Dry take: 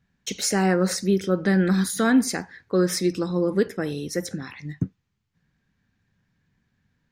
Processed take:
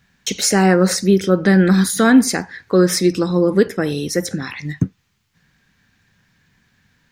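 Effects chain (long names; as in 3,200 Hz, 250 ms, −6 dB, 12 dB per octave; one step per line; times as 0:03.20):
floating-point word with a short mantissa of 8 bits
one half of a high-frequency compander encoder only
level +7.5 dB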